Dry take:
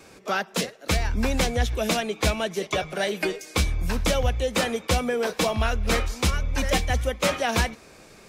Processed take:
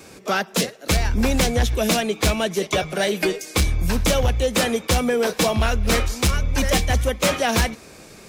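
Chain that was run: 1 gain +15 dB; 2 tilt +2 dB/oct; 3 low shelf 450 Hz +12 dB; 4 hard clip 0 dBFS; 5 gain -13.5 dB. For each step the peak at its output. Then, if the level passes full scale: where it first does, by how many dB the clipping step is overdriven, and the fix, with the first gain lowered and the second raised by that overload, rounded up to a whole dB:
+2.5, +7.0, +8.0, 0.0, -13.5 dBFS; step 1, 8.0 dB; step 1 +7 dB, step 5 -5.5 dB

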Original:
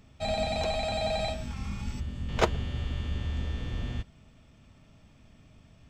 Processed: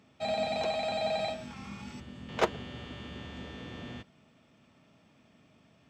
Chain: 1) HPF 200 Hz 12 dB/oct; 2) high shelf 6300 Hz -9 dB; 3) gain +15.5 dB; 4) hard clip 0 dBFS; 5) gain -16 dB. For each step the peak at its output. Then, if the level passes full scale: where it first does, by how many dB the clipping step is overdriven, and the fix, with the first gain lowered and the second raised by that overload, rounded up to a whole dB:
-8.5, -9.0, +6.5, 0.0, -16.0 dBFS; step 3, 6.5 dB; step 3 +8.5 dB, step 5 -9 dB

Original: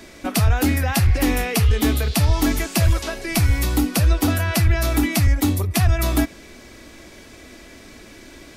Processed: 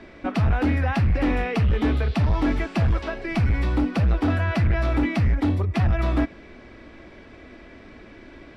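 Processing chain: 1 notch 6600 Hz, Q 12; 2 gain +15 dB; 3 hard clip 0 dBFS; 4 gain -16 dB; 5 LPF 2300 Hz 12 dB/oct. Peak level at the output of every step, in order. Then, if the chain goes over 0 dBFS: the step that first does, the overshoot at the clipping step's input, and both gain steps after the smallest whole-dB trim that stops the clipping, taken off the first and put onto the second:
-7.5, +7.5, 0.0, -16.0, -15.5 dBFS; step 2, 7.5 dB; step 2 +7 dB, step 4 -8 dB

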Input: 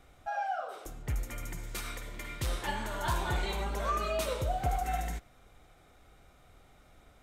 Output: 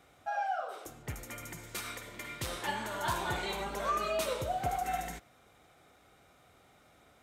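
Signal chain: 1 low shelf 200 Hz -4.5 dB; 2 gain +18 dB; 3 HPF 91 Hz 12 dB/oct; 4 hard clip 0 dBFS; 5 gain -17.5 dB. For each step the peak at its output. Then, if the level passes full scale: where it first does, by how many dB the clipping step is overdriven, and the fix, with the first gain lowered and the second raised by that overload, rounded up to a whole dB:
-20.0, -2.0, -2.0, -2.0, -19.5 dBFS; no overload

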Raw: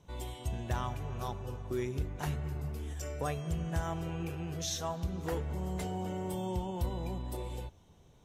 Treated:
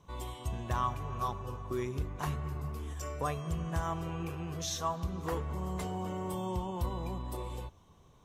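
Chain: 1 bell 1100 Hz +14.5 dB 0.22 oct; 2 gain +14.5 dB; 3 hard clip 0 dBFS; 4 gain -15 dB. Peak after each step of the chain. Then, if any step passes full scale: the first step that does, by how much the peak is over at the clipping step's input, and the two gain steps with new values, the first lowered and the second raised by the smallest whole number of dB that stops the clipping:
-18.5, -4.0, -4.0, -19.0 dBFS; no overload

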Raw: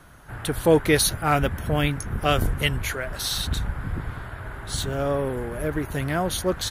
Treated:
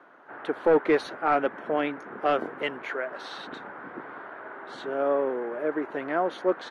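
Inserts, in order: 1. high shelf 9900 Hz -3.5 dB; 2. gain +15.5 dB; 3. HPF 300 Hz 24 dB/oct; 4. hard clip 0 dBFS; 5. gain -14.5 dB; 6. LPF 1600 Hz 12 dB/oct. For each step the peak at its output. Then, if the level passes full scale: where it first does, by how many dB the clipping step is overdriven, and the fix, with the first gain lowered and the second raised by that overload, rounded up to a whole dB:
-6.0, +9.5, +8.0, 0.0, -14.5, -14.0 dBFS; step 2, 8.0 dB; step 2 +7.5 dB, step 5 -6.5 dB

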